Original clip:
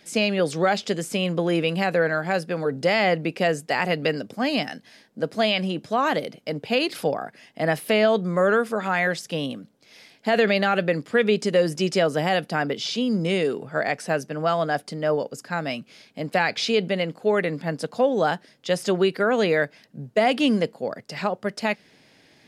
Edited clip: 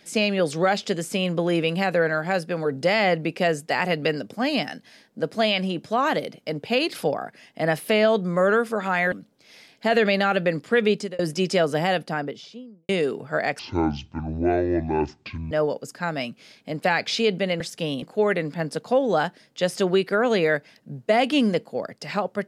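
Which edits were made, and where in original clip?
9.12–9.54 s: move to 17.10 s
11.34–11.61 s: fade out
12.25–13.31 s: studio fade out
14.01–15.01 s: speed 52%

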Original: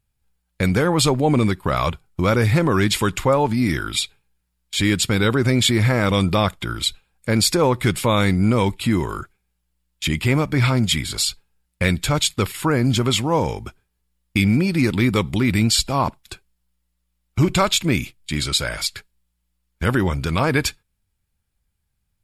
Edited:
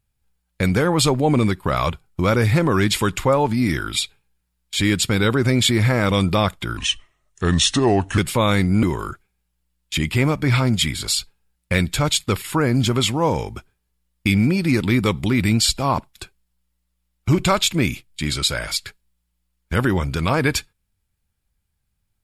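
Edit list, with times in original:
6.77–7.87 s: speed 78%
8.52–8.93 s: delete

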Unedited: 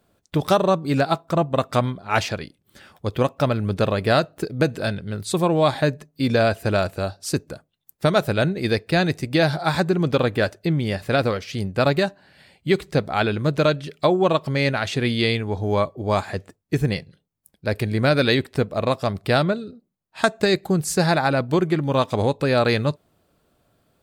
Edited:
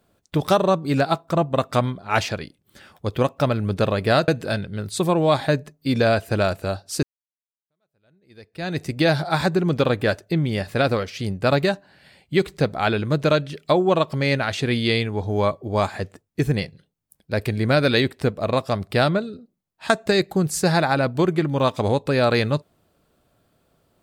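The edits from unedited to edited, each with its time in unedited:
4.28–4.62 s: delete
7.37–9.16 s: fade in exponential

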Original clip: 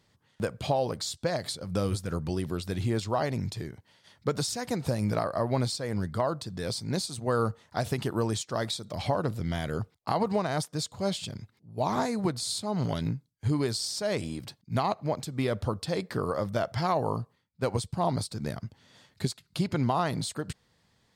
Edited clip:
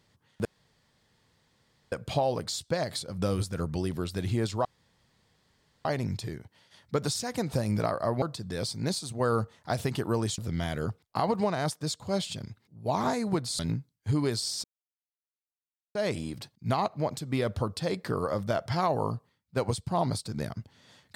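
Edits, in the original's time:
0.45 s: insert room tone 1.47 s
3.18 s: insert room tone 1.20 s
5.55–6.29 s: delete
8.45–9.30 s: delete
12.51–12.96 s: delete
14.01 s: insert silence 1.31 s

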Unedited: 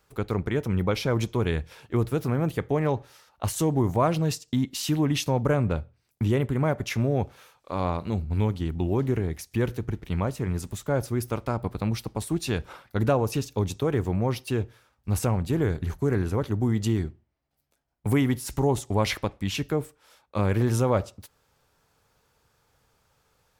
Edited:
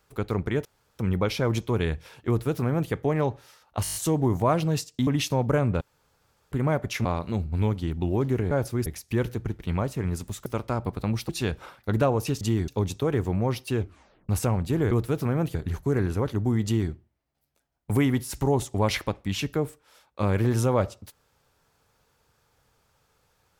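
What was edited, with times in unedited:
0.65 s: insert room tone 0.34 s
1.94–2.58 s: copy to 15.71 s
3.49 s: stutter 0.02 s, 7 plays
4.61–5.03 s: delete
5.77–6.48 s: room tone
7.01–7.83 s: delete
10.89–11.24 s: move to 9.29 s
12.07–12.36 s: delete
14.60 s: tape stop 0.49 s
16.80–17.07 s: copy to 13.48 s

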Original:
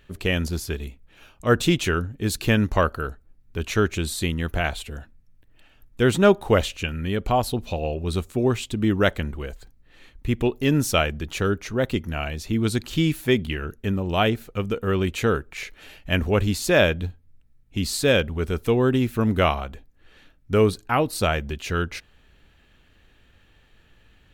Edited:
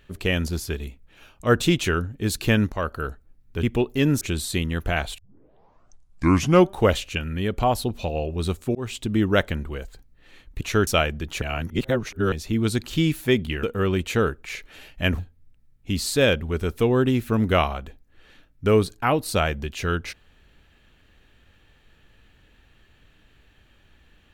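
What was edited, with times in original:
2.72–3.04 s: fade in, from -12.5 dB
3.63–3.89 s: swap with 10.29–10.87 s
4.86 s: tape start 1.58 s
8.43–8.74 s: fade in equal-power
11.42–12.32 s: reverse
13.63–14.71 s: delete
16.27–17.06 s: delete

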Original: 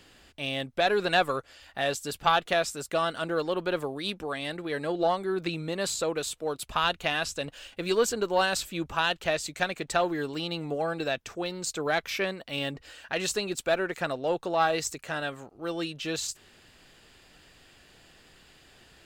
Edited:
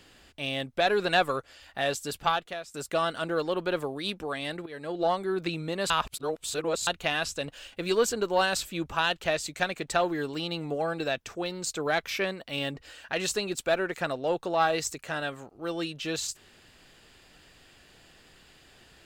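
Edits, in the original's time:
2.20–2.74 s: fade out quadratic, to -15 dB
4.66–5.12 s: fade in, from -14 dB
5.90–6.87 s: reverse

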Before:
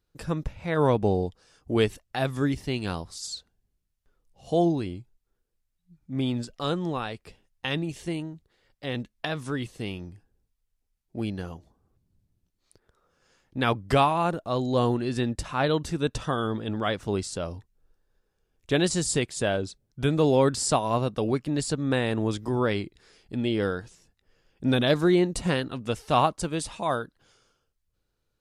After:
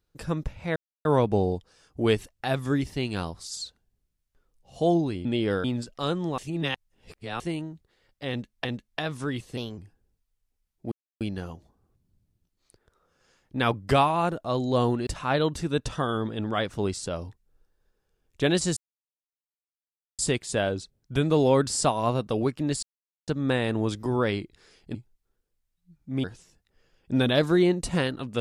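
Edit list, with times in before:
0.76 s: insert silence 0.29 s
4.96–6.25 s: swap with 23.37–23.76 s
6.99–8.01 s: reverse
8.91–9.26 s: loop, 2 plays
9.83–10.08 s: speed 121%
11.22 s: insert silence 0.29 s
15.08–15.36 s: delete
19.06 s: insert silence 1.42 s
21.70 s: insert silence 0.45 s

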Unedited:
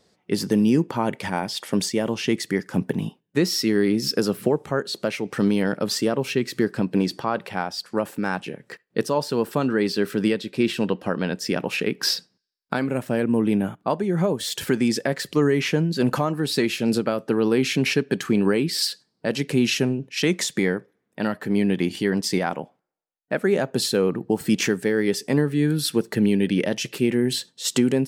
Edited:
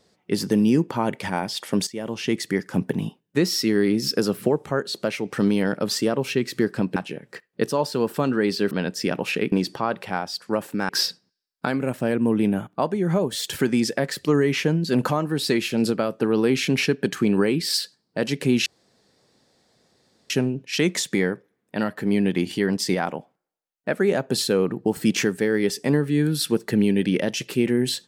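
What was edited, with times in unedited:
1.87–2.56 s: fade in equal-power, from -14.5 dB
6.96–8.33 s: move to 11.97 s
10.08–11.16 s: delete
19.74 s: insert room tone 1.64 s

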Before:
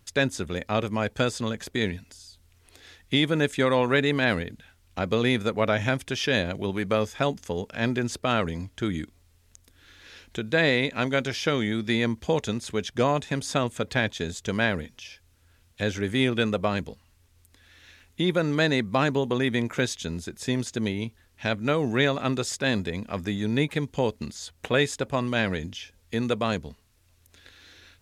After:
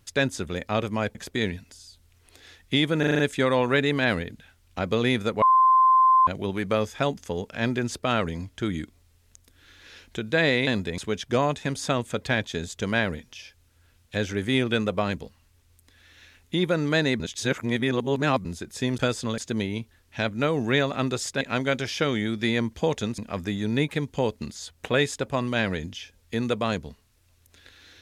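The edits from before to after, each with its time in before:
1.15–1.55 s: move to 20.64 s
3.39 s: stutter 0.04 s, 6 plays
5.62–6.47 s: bleep 1.04 kHz -14 dBFS
10.87–12.64 s: swap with 22.67–22.98 s
18.86–20.11 s: reverse

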